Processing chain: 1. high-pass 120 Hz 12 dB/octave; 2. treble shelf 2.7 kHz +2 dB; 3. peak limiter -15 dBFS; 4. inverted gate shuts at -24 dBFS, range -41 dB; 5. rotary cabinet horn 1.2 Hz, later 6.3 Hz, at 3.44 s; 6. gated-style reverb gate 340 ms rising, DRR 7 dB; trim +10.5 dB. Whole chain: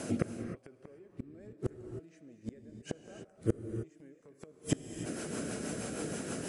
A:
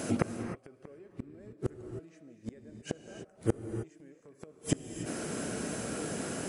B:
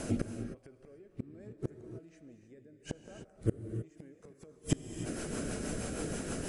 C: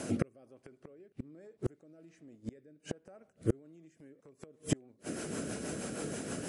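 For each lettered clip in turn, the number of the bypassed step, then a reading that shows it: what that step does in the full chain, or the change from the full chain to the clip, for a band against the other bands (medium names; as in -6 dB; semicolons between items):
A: 5, crest factor change +2.5 dB; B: 1, 125 Hz band +2.0 dB; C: 6, momentary loudness spread change +2 LU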